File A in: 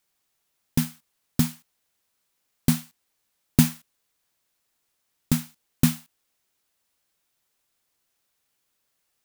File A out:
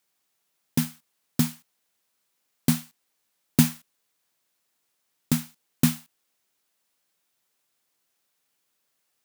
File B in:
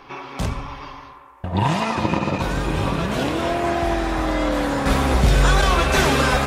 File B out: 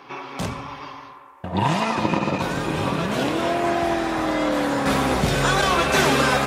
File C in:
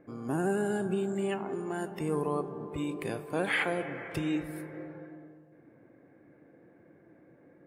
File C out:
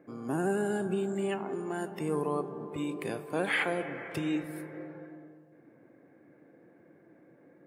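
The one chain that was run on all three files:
high-pass 130 Hz 12 dB/octave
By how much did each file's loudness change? -0.5 LU, -1.0 LU, 0.0 LU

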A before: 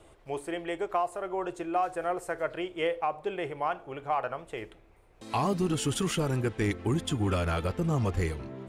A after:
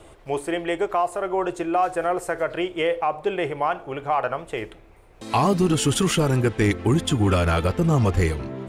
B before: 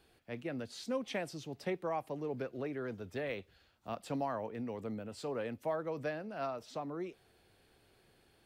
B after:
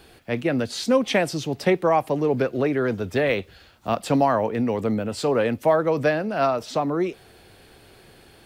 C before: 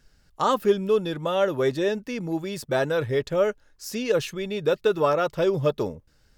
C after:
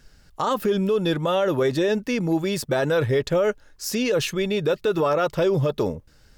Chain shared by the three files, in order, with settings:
peak limiter -20.5 dBFS; normalise loudness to -23 LUFS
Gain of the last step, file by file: +8.5 dB, +17.0 dB, +7.0 dB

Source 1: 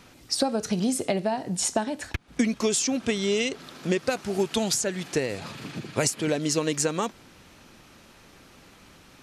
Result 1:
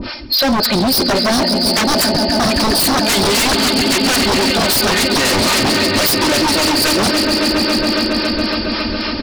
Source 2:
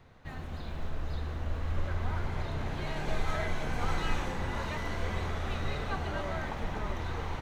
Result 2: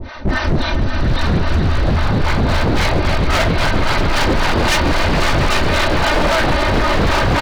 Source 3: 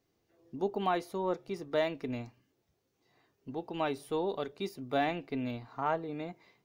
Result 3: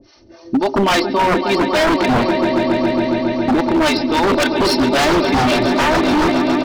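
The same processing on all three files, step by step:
knee-point frequency compression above 4 kHz 4:1; comb 3.3 ms, depth 79%; reverse; compression 8:1, threshold -33 dBFS; reverse; harmonic tremolo 3.7 Hz, depth 100%, crossover 590 Hz; on a send: echo with a slow build-up 138 ms, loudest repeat 5, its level -12.5 dB; on the sum: wavefolder -39.5 dBFS; peak normalisation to -9 dBFS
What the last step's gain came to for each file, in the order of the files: +30.5 dB, +30.5 dB, +30.5 dB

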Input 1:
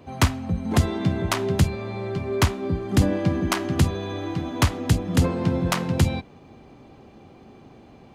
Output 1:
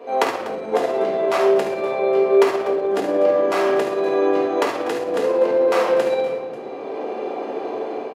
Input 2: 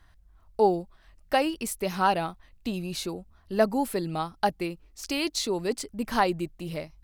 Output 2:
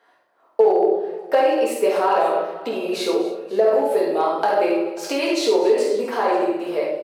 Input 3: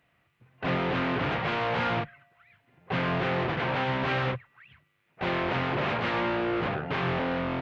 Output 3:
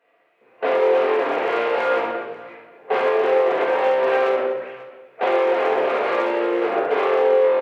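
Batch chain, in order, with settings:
simulated room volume 170 m³, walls mixed, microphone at 1.7 m; level rider gain up to 8 dB; treble shelf 3.3 kHz -11.5 dB; peak limiter -10.5 dBFS; hard clipper -12 dBFS; compression, threshold -21 dBFS; ladder high-pass 390 Hz, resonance 50%; on a send: multi-tap echo 51/71/245/539 ms -9.5/-9/-16.5/-19.5 dB; on the sum: normalise loudness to -20 LUFS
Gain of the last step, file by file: +15.5 dB, +12.5 dB, +10.5 dB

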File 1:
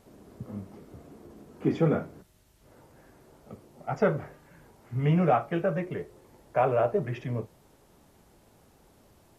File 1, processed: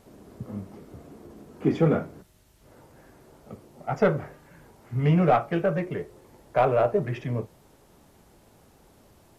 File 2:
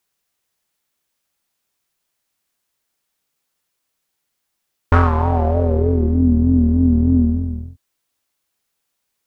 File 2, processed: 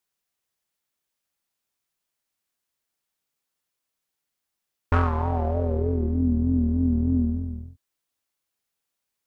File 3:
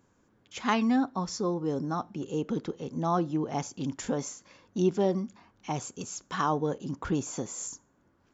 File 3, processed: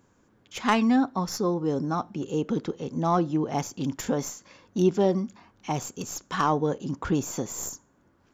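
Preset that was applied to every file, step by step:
tracing distortion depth 0.04 ms; peak normalisation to -9 dBFS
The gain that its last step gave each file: +3.0 dB, -8.0 dB, +3.5 dB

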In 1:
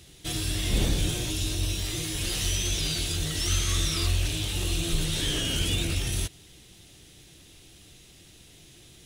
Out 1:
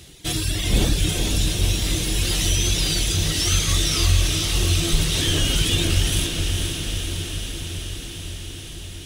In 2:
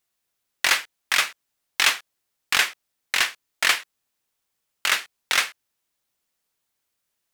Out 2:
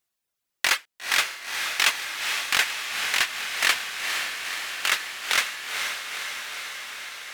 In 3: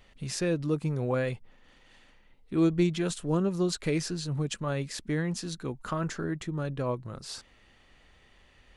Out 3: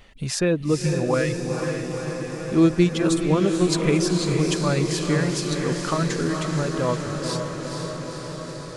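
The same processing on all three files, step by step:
reverb removal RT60 1.1 s; echo that smears into a reverb 481 ms, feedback 74%, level -5 dB; peak normalisation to -6 dBFS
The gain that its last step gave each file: +7.0 dB, -2.0 dB, +8.0 dB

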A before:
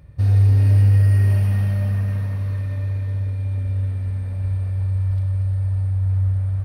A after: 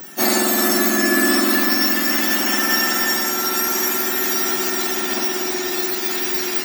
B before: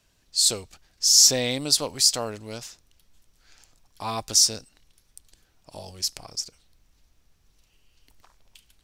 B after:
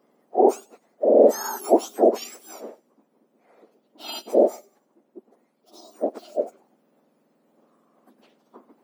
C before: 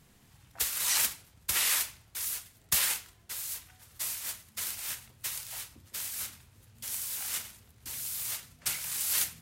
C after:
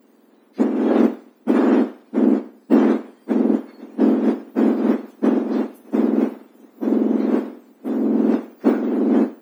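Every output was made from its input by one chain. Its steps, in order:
spectrum inverted on a logarithmic axis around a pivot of 1.8 kHz; gain riding within 4 dB 0.5 s; feedback echo behind a high-pass 98 ms, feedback 35%, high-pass 2 kHz, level -19.5 dB; peak normalisation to -3 dBFS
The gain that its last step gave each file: +25.5 dB, -2.0 dB, +7.5 dB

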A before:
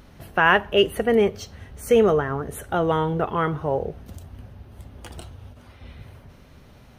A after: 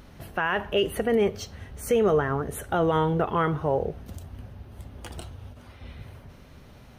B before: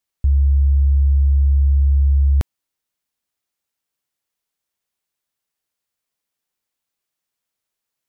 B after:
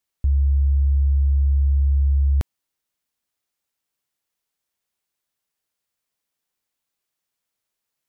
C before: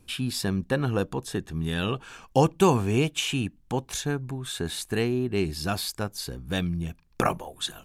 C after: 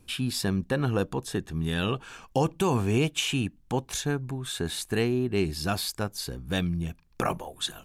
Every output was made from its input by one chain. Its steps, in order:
peak limiter -14 dBFS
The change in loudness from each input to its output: -4.0 LU, -3.5 LU, -1.0 LU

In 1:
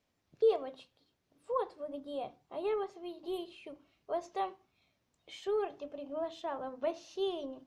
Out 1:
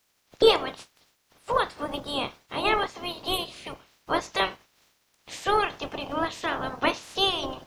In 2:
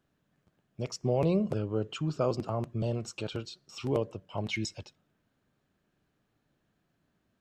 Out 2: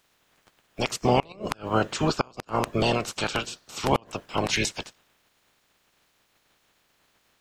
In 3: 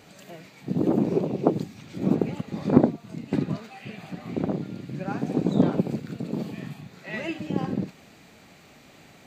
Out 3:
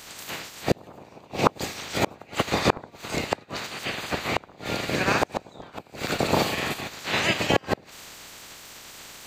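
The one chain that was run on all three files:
spectral peaks clipped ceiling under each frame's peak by 25 dB; inverted gate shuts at -15 dBFS, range -31 dB; normalise loudness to -27 LUFS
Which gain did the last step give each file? +10.0 dB, +8.5 dB, +8.0 dB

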